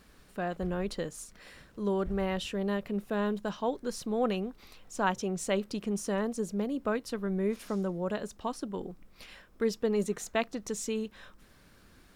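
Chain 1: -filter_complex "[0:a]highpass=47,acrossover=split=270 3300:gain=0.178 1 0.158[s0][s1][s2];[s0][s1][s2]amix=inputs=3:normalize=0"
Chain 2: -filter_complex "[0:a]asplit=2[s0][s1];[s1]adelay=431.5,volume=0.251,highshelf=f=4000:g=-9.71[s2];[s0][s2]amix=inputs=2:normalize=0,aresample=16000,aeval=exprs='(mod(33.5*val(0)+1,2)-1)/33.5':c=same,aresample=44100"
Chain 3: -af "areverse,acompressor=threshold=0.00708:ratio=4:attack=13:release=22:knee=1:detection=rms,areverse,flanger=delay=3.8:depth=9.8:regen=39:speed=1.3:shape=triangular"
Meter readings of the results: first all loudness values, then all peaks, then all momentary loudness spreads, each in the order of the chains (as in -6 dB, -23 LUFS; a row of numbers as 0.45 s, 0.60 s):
-35.5 LUFS, -36.5 LUFS, -46.5 LUFS; -14.0 dBFS, -25.5 dBFS, -30.5 dBFS; 14 LU, 11 LU, 10 LU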